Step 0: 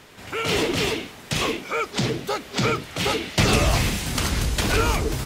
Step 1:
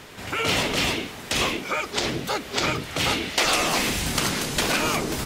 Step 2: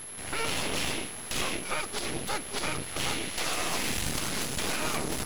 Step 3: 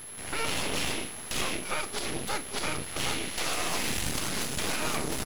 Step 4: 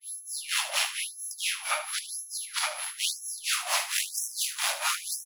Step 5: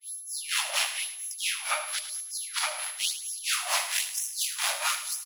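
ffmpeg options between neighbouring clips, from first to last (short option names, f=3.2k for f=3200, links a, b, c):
-filter_complex "[0:a]afftfilt=real='re*lt(hypot(re,im),0.355)':imag='im*lt(hypot(re,im),0.355)':win_size=1024:overlap=0.75,asplit=2[a][b];[b]acompressor=threshold=-33dB:ratio=6,volume=-3dB[c];[a][c]amix=inputs=2:normalize=0"
-af "alimiter=limit=-15.5dB:level=0:latency=1:release=114,aeval=exprs='max(val(0),0)':c=same,aeval=exprs='val(0)+0.0112*sin(2*PI*11000*n/s)':c=same,volume=-1dB"
-filter_complex "[0:a]asplit=2[a][b];[b]adelay=36,volume=-13dB[c];[a][c]amix=inputs=2:normalize=0,aeval=exprs='sgn(val(0))*max(abs(val(0))-0.00224,0)':c=same"
-filter_complex "[0:a]acrossover=split=630[a][b];[a]aeval=exprs='val(0)*(1-1/2+1/2*cos(2*PI*4.4*n/s))':c=same[c];[b]aeval=exprs='val(0)*(1-1/2-1/2*cos(2*PI*4.4*n/s))':c=same[d];[c][d]amix=inputs=2:normalize=0,asplit=2[e][f];[f]aecho=0:1:76|152|228:0.282|0.0902|0.0289[g];[e][g]amix=inputs=2:normalize=0,afftfilt=real='re*gte(b*sr/1024,520*pow(5500/520,0.5+0.5*sin(2*PI*1*pts/sr)))':imag='im*gte(b*sr/1024,520*pow(5500/520,0.5+0.5*sin(2*PI*1*pts/sr)))':win_size=1024:overlap=0.75,volume=7dB"
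-af "aecho=1:1:108|216|324|432:0.211|0.0888|0.0373|0.0157"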